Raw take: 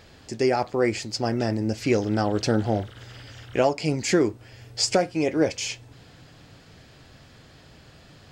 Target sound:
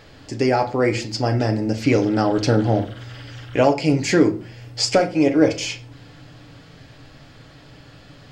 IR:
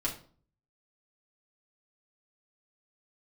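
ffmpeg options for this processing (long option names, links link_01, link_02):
-filter_complex "[0:a]asplit=2[link_01][link_02];[1:a]atrim=start_sample=2205,lowpass=6200[link_03];[link_02][link_03]afir=irnorm=-1:irlink=0,volume=-4.5dB[link_04];[link_01][link_04]amix=inputs=2:normalize=0"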